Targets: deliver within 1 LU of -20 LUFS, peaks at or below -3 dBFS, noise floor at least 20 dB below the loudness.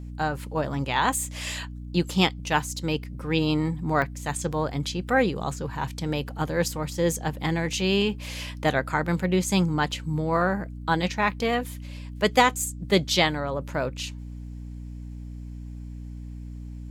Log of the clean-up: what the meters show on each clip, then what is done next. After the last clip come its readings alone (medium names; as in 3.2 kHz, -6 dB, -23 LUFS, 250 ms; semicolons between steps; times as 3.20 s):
dropouts 1; longest dropout 1.2 ms; hum 60 Hz; highest harmonic 300 Hz; hum level -35 dBFS; loudness -26.0 LUFS; peak level -6.5 dBFS; loudness target -20.0 LUFS
-> interpolate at 4.02 s, 1.2 ms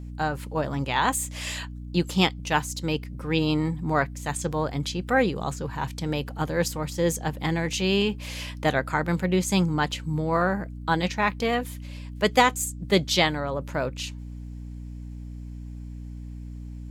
dropouts 0; hum 60 Hz; highest harmonic 300 Hz; hum level -35 dBFS
-> de-hum 60 Hz, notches 5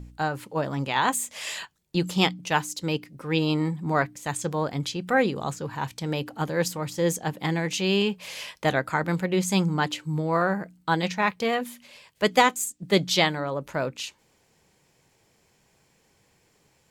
hum not found; loudness -26.0 LUFS; peak level -6.0 dBFS; loudness target -20.0 LUFS
-> trim +6 dB; peak limiter -3 dBFS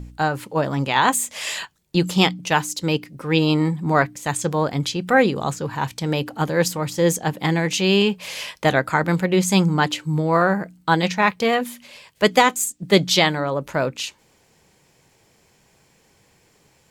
loudness -20.5 LUFS; peak level -3.0 dBFS; noise floor -60 dBFS